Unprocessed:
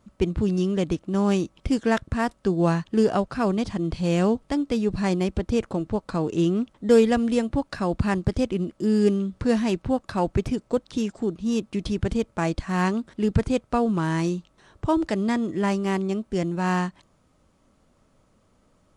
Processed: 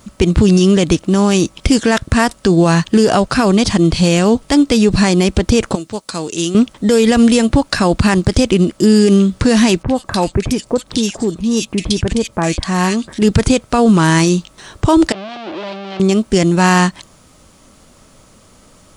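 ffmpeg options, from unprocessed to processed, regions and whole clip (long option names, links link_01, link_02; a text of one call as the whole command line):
ffmpeg -i in.wav -filter_complex "[0:a]asettb=1/sr,asplit=3[link_01][link_02][link_03];[link_01]atrim=end=5.754[link_04];[link_02]atrim=start=5.75:end=6.55,asetpts=PTS-STARTPTS,afade=type=in:duration=0.004:curve=qsin,afade=type=out:start_time=0.796:duration=0.004:curve=qsin,highpass=frequency=740:poles=1,equalizer=frequency=1100:width=0.32:gain=-10[link_05];[link_03]atrim=start=6.546[link_06];[link_04][link_05]acrossfade=duration=0.004:curve1=hsin:curve2=qsin[link_07];[link_07][link_06]acrossfade=duration=0.004:curve1=qsin:curve2=hsin,asettb=1/sr,asplit=3[link_08][link_09][link_10];[link_08]atrim=end=9.834[link_11];[link_09]atrim=start=9.83:end=13.22,asetpts=PTS-STARTPTS,afade=type=in:duration=0.004:curve=qsin,afade=type=out:start_time=3.386:duration=0.004:curve=qsin,bandreject=frequency=1400:width=14,acompressor=threshold=-38dB:ratio=1.5:attack=3.2:release=140:knee=1:detection=peak,acrossover=split=1800[link_12][link_13];[link_13]adelay=50[link_14];[link_12][link_14]amix=inputs=2:normalize=0,atrim=end_sample=149499[link_15];[link_10]atrim=start=13.216[link_16];[link_11][link_15]acrossfade=duration=0.004:curve1=hsin:curve2=qsin[link_17];[link_17][link_16]acrossfade=duration=0.004:curve1=qsin:curve2=hsin,asettb=1/sr,asplit=3[link_18][link_19][link_20];[link_18]atrim=end=15.124[link_21];[link_19]atrim=start=15.12:end=16,asetpts=PTS-STARTPTS,afade=type=in:duration=0.004:curve=qsin,afade=type=out:start_time=0.876:duration=0.004:curve=qsin,aeval=exprs='(tanh(79.4*val(0)+0.65)-tanh(0.65))/79.4':channel_layout=same,acrusher=bits=6:mix=0:aa=0.5,highpass=180,equalizer=frequency=240:width_type=q:width=4:gain=-8,equalizer=frequency=350:width_type=q:width=4:gain=4,equalizer=frequency=630:width_type=q:width=4:gain=8,equalizer=frequency=1900:width_type=q:width=4:gain=-7,lowpass=frequency=3700:width=0.5412,lowpass=frequency=3700:width=1.3066[link_22];[link_20]atrim=start=15.996[link_23];[link_21][link_22]acrossfade=duration=0.004:curve1=hsin:curve2=qsin[link_24];[link_24][link_23]acrossfade=duration=0.004:curve1=qsin:curve2=hsin,highshelf=frequency=2700:gain=11.5,alimiter=level_in=16dB:limit=-1dB:release=50:level=0:latency=1,volume=-1dB" out.wav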